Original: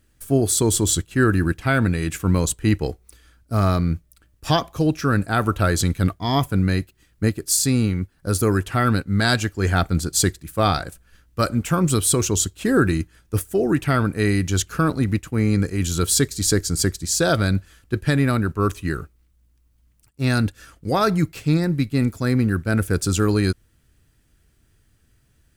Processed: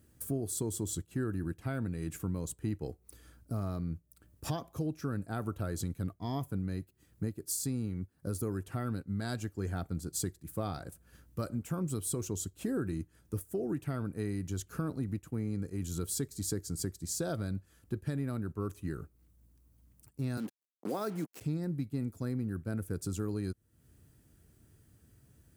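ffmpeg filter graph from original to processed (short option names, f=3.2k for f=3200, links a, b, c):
-filter_complex "[0:a]asettb=1/sr,asplit=3[a][b][c];[a]atrim=end=20.374[d];[b]atrim=start=20.37:end=21.41,asetpts=PTS-STARTPTS,afade=t=in:d=0.004:c=qsin,afade=t=out:st=1.036:d=0.004:c=qsin,acrusher=bits=4:mix=0:aa=0.5,highpass=f=210:w=0.5412,highpass=f=210:w=1.3066[e];[c]atrim=start=21.406[f];[d][e]acrossfade=d=0.004:c1=hsin:c2=qsin[g];[g][f]acrossfade=d=0.004:c1=qsin:c2=hsin,equalizer=f=2.7k:w=0.38:g=-11,acompressor=threshold=-40dB:ratio=3,highpass=81,volume=2.5dB"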